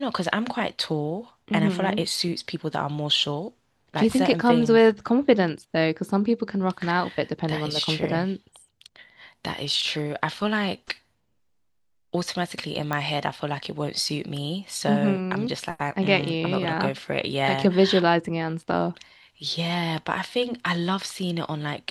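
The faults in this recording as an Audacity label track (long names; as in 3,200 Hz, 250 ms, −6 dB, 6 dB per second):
12.930000	12.930000	click −13 dBFS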